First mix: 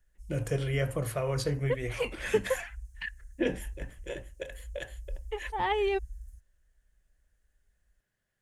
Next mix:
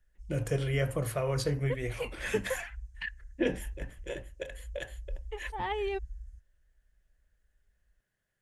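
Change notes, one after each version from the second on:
second voice −5.0 dB
background: add high-frequency loss of the air 100 metres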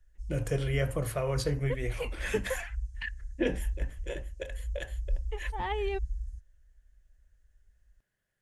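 background +8.0 dB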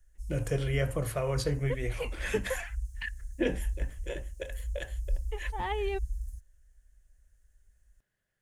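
background: remove high-frequency loss of the air 100 metres

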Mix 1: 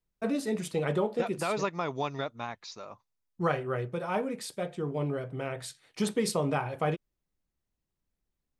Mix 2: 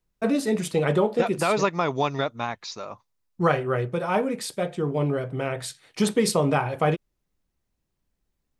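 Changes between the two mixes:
first voice +7.0 dB
second voice +8.0 dB

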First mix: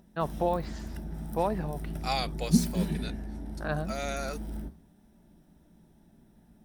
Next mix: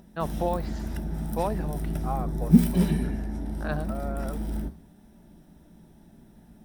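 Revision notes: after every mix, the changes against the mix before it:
second voice: add Chebyshev low-pass filter 1,200 Hz, order 3
background +6.5 dB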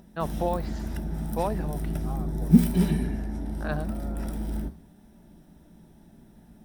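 second voice −9.5 dB

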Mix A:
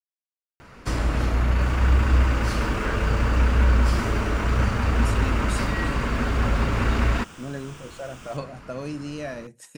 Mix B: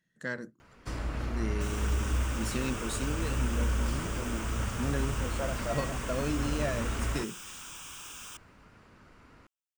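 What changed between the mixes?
speech: entry −2.60 s
first sound −11.0 dB
second sound: add high-shelf EQ 5,800 Hz +11 dB

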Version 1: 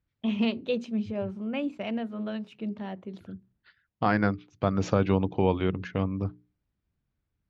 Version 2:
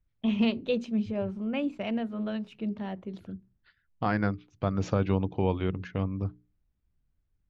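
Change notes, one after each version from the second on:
second voice −4.0 dB
master: remove high-pass filter 120 Hz 6 dB per octave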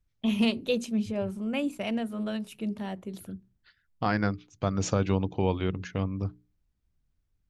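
master: remove high-frequency loss of the air 200 metres

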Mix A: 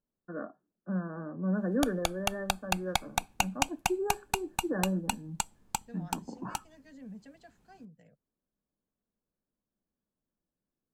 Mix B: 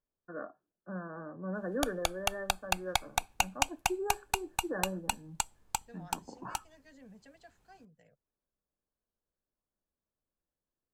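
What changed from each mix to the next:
master: add parametric band 210 Hz −10 dB 1.3 octaves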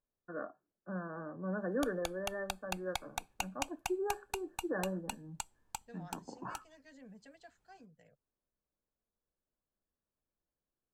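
background −9.0 dB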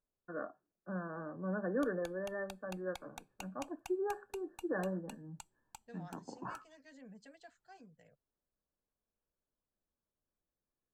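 background −11.0 dB

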